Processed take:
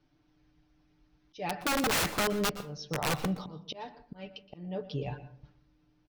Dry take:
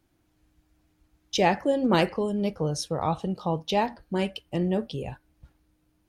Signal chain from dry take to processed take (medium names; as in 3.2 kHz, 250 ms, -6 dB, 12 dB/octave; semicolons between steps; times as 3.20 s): steep low-pass 6 kHz 72 dB/octave; comb 6.8 ms, depth 80%; slow attack 600 ms; integer overflow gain 20.5 dB; reverberation RT60 0.60 s, pre-delay 118 ms, DRR 14 dB; trim -2.5 dB